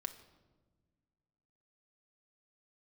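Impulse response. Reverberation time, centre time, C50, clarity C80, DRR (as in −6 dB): non-exponential decay, 9 ms, 13.0 dB, 14.5 dB, 6.5 dB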